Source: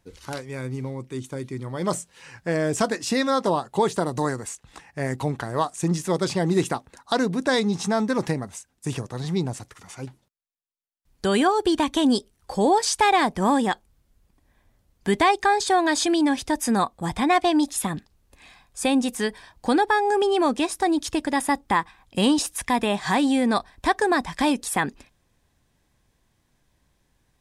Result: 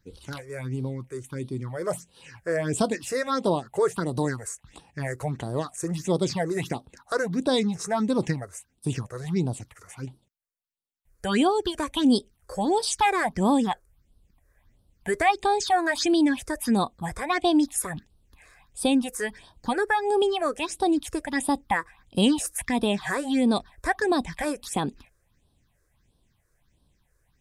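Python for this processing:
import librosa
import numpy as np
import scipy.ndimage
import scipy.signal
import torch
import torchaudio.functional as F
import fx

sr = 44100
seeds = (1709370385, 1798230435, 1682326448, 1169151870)

y = fx.phaser_stages(x, sr, stages=6, low_hz=210.0, high_hz=2000.0, hz=1.5, feedback_pct=25)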